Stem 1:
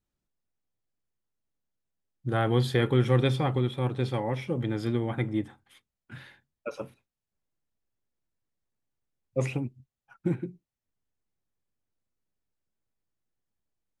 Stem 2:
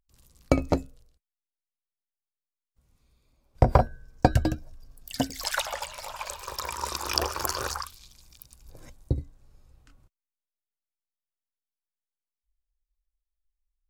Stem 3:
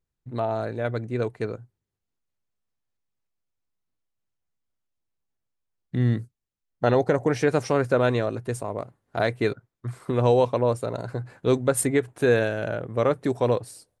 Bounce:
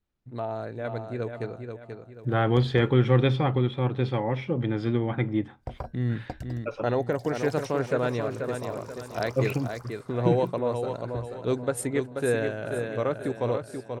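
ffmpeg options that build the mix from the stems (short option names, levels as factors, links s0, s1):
-filter_complex "[0:a]lowpass=3900,volume=1.33[s0];[1:a]adelay=2050,volume=0.133[s1];[2:a]highshelf=f=6600:g=-4.5,volume=0.531,asplit=2[s2][s3];[s3]volume=0.473,aecho=0:1:484|968|1452|1936|2420:1|0.38|0.144|0.0549|0.0209[s4];[s0][s1][s2][s4]amix=inputs=4:normalize=0"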